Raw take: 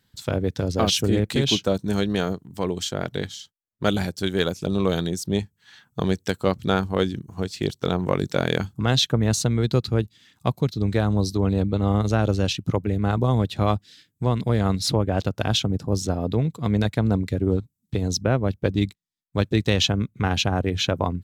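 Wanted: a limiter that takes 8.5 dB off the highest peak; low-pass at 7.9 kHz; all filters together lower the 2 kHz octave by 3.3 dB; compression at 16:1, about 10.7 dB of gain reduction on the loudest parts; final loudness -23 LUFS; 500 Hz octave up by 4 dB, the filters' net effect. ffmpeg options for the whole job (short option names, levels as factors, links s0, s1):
-af "lowpass=7900,equalizer=f=500:t=o:g=5,equalizer=f=2000:t=o:g=-5,acompressor=threshold=0.0631:ratio=16,volume=2.99,alimiter=limit=0.335:level=0:latency=1"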